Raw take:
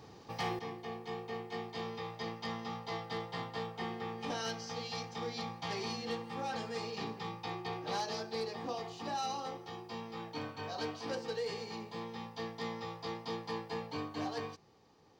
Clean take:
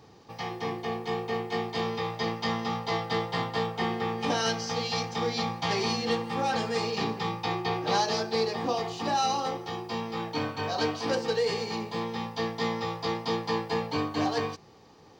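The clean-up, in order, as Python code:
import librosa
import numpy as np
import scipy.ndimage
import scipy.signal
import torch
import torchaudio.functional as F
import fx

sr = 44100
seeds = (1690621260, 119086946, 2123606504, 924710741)

y = fx.fix_declip(x, sr, threshold_db=-30.0)
y = fx.gain(y, sr, db=fx.steps((0.0, 0.0), (0.59, 10.5)))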